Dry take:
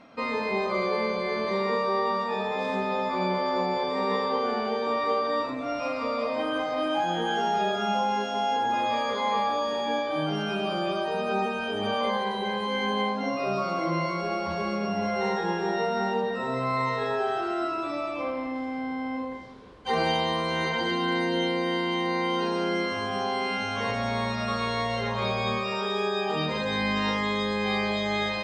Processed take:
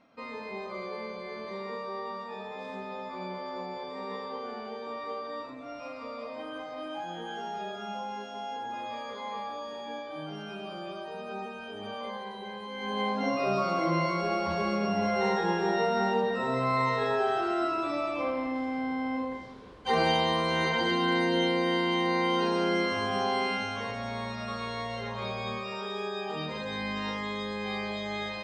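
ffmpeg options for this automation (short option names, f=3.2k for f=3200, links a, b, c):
-af "afade=t=in:st=12.76:d=0.47:silence=0.281838,afade=t=out:st=23.39:d=0.49:silence=0.446684"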